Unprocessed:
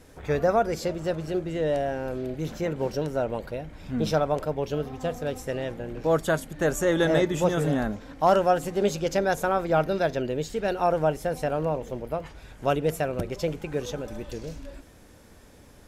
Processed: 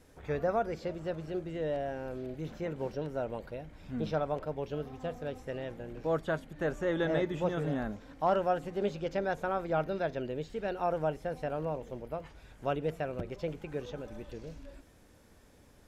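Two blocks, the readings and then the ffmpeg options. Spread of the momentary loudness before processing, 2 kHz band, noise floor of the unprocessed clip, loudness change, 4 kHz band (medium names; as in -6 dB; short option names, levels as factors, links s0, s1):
11 LU, -8.0 dB, -51 dBFS, -8.0 dB, -11.0 dB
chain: -filter_complex "[0:a]acrossover=split=4000[s0][s1];[s1]acompressor=threshold=0.00126:ratio=4:attack=1:release=60[s2];[s0][s2]amix=inputs=2:normalize=0,volume=0.398"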